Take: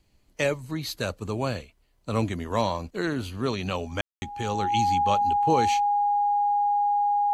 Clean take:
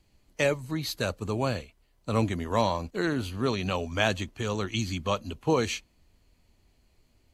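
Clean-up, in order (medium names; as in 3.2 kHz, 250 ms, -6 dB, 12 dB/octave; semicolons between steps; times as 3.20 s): band-stop 820 Hz, Q 30; room tone fill 4.01–4.22 s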